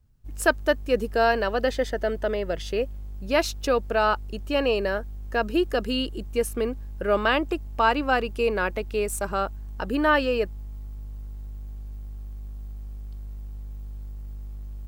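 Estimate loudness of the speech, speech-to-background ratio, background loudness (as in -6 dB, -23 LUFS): -25.5 LUFS, 14.5 dB, -40.0 LUFS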